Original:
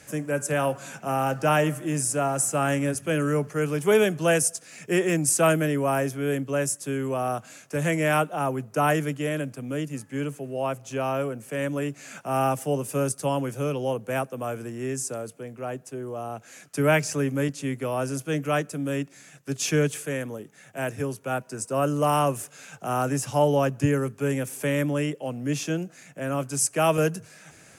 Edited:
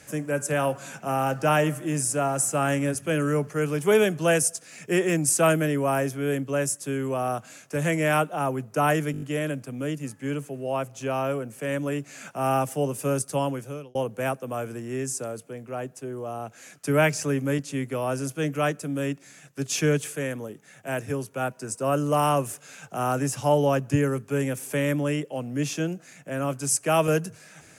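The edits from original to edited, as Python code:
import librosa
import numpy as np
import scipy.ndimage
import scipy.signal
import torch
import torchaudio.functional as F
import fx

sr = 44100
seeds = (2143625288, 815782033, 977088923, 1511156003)

y = fx.edit(x, sr, fx.stutter(start_s=9.12, slice_s=0.02, count=6),
    fx.fade_out_span(start_s=13.33, length_s=0.52), tone=tone)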